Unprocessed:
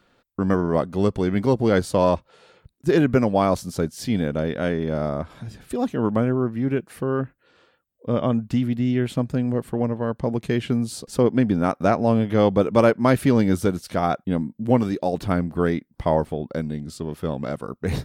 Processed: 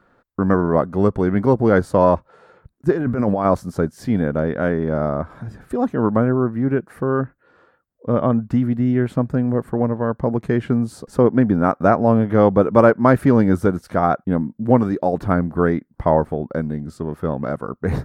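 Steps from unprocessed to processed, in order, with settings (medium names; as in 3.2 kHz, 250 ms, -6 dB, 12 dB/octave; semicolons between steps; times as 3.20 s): resonant high shelf 2.1 kHz -10.5 dB, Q 1.5; 2.91–3.46 s: compressor with a negative ratio -23 dBFS, ratio -1; trim +3.5 dB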